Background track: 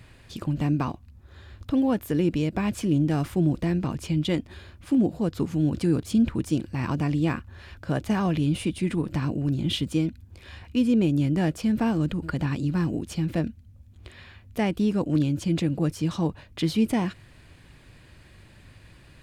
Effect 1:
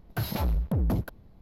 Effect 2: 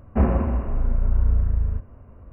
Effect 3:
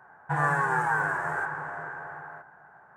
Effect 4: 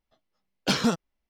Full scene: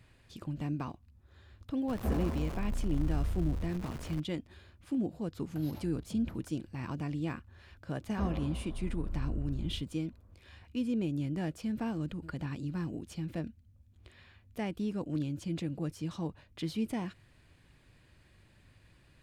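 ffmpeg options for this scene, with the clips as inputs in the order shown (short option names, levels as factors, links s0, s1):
-filter_complex "[2:a]asplit=2[s0][s1];[0:a]volume=0.282[s2];[s0]aeval=exprs='val(0)+0.5*0.0708*sgn(val(0))':c=same[s3];[1:a]acompressor=threshold=0.0224:ratio=6:attack=1:release=96:knee=1:detection=peak[s4];[s3]atrim=end=2.32,asetpts=PTS-STARTPTS,volume=0.178,afade=t=in:d=0.004:c=hsin,afade=t=out:st=2.316:d=0.004:c=hsin,adelay=1880[s5];[s4]atrim=end=1.41,asetpts=PTS-STARTPTS,volume=0.211,afade=t=in:d=0.004:c=hsin,afade=t=out:st=1.406:d=0.004:c=hsin,adelay=5390[s6];[s1]atrim=end=2.32,asetpts=PTS-STARTPTS,volume=0.141,afade=t=in:d=0.004:c=hsin,afade=t=out:st=2.316:d=0.004:c=hsin,adelay=353682S[s7];[s2][s5][s6][s7]amix=inputs=4:normalize=0"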